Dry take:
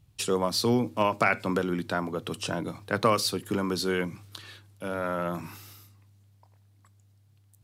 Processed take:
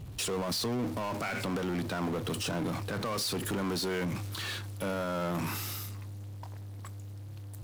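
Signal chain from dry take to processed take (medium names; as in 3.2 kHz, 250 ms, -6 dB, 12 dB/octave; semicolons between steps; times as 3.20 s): power-law waveshaper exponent 0.5; peak limiter -20 dBFS, peak gain reduction 10 dB; tape noise reduction on one side only decoder only; trim -7 dB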